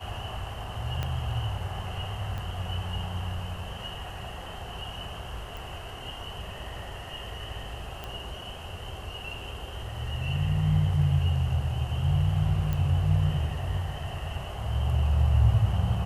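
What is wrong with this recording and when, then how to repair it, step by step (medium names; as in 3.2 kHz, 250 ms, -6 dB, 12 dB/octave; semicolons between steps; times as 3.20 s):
1.03 s: pop -17 dBFS
2.38 s: pop -23 dBFS
5.57 s: pop
8.04 s: pop -22 dBFS
12.73 s: pop -18 dBFS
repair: de-click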